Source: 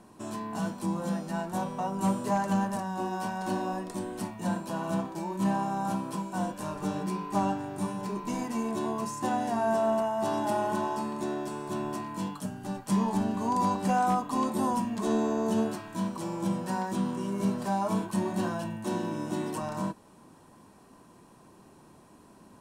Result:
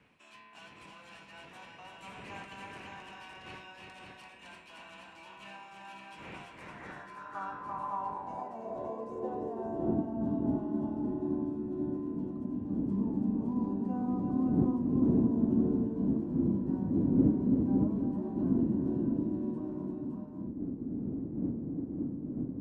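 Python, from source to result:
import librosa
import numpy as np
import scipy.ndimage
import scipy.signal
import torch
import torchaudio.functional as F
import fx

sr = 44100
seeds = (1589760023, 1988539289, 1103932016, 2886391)

y = fx.dmg_wind(x, sr, seeds[0], corner_hz=170.0, level_db=-25.0)
y = fx.echo_multitap(y, sr, ms=(339, 562), db=(-5.0, -4.0))
y = fx.filter_sweep_bandpass(y, sr, from_hz=2500.0, to_hz=270.0, start_s=6.42, end_s=10.19, q=4.2)
y = y * librosa.db_to_amplitude(1.5)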